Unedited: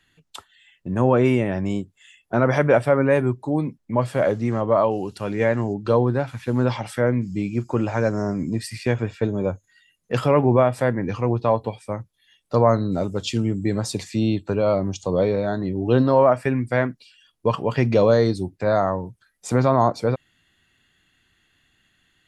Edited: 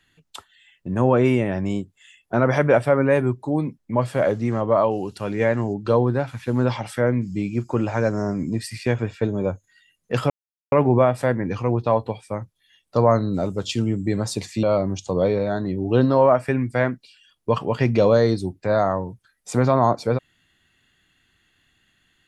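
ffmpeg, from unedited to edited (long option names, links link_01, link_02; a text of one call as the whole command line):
ffmpeg -i in.wav -filter_complex "[0:a]asplit=3[link_01][link_02][link_03];[link_01]atrim=end=10.3,asetpts=PTS-STARTPTS,afade=type=out:start_time=10.296:duration=0.004:curve=hsin,apad=pad_dur=0.42[link_04];[link_02]atrim=start=10.3:end=14.212,asetpts=PTS-STARTPTS,afade=type=in:duration=0.004:curve=hsin[link_05];[link_03]atrim=start=14.598[link_06];[link_04][link_05]concat=n=2:v=0:a=1[link_07];[link_07][link_06]acrossfade=duration=0.004:curve1=hsin:curve2=hsin" out.wav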